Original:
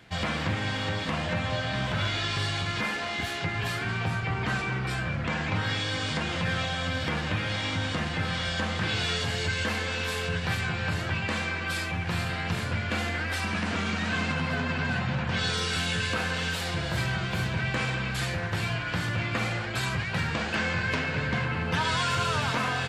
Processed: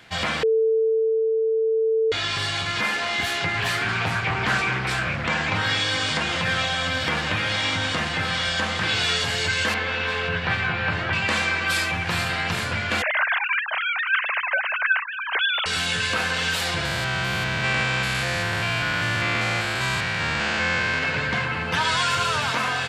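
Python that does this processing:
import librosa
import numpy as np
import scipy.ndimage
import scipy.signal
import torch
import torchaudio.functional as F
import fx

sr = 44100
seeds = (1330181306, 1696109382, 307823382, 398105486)

y = fx.doppler_dist(x, sr, depth_ms=0.24, at=(3.57, 5.27))
y = fx.lowpass(y, sr, hz=2900.0, slope=12, at=(9.74, 11.13))
y = fx.sine_speech(y, sr, at=(13.02, 15.66))
y = fx.spec_steps(y, sr, hold_ms=200, at=(16.85, 21.03))
y = fx.edit(y, sr, fx.bleep(start_s=0.43, length_s=1.69, hz=445.0, db=-17.5), tone=tone)
y = fx.low_shelf(y, sr, hz=450.0, db=-9.0)
y = fx.rider(y, sr, range_db=10, speed_s=2.0)
y = y * librosa.db_to_amplitude(7.0)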